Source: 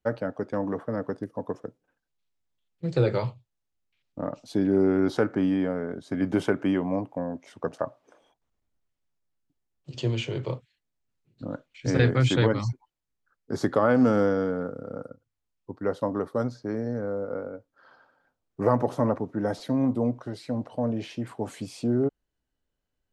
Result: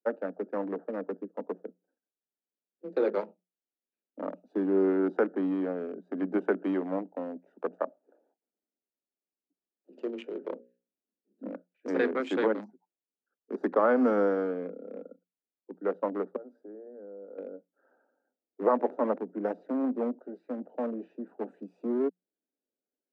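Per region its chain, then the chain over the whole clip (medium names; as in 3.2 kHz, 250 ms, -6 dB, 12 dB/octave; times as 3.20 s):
10.52–11.48 s: block-companded coder 7-bit + bass shelf 350 Hz +9 dB + hum notches 60/120/180/240/300/360/420/480/540 Hz
16.36–17.38 s: high-pass 130 Hz + band-stop 230 Hz, Q 5.2 + compression 2:1, threshold -44 dBFS
whole clip: local Wiener filter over 41 samples; Chebyshev high-pass 180 Hz, order 10; three-band isolator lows -21 dB, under 240 Hz, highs -13 dB, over 2.1 kHz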